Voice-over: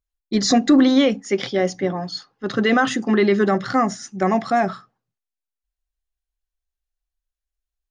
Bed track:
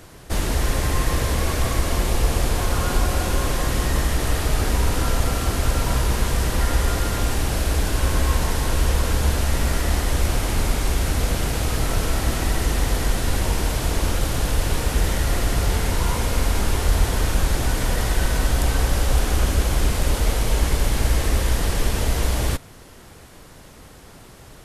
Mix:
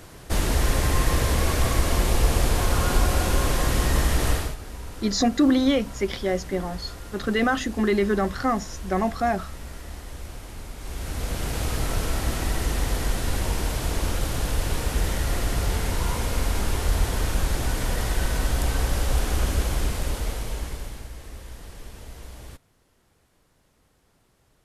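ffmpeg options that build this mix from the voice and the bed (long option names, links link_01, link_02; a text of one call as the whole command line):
ffmpeg -i stem1.wav -i stem2.wav -filter_complex "[0:a]adelay=4700,volume=-5dB[link_01];[1:a]volume=12.5dB,afade=type=out:start_time=4.3:duration=0.26:silence=0.149624,afade=type=in:start_time=10.76:duration=0.86:silence=0.223872,afade=type=out:start_time=19.59:duration=1.5:silence=0.158489[link_02];[link_01][link_02]amix=inputs=2:normalize=0" out.wav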